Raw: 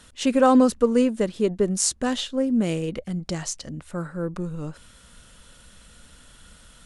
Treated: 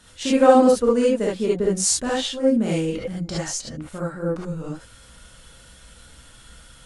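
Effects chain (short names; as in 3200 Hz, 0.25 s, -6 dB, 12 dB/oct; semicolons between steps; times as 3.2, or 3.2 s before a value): non-linear reverb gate 90 ms rising, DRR -5.5 dB; gain -3.5 dB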